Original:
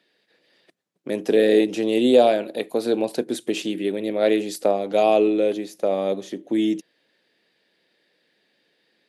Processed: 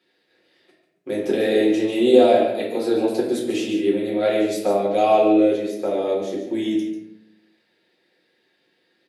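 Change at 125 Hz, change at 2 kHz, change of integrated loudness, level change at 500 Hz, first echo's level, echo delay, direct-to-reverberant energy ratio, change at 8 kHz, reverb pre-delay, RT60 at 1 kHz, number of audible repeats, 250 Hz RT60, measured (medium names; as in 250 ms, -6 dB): no reading, +0.5 dB, +1.5 dB, +1.0 dB, -8.5 dB, 143 ms, -5.5 dB, -0.5 dB, 3 ms, 0.70 s, 1, 1.0 s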